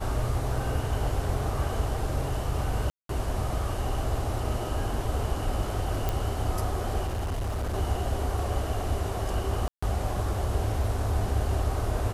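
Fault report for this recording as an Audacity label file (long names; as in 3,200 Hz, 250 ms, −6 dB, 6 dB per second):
2.900000	3.090000	drop-out 193 ms
6.090000	6.090000	click
7.060000	7.750000	clipping −26.5 dBFS
9.680000	9.820000	drop-out 145 ms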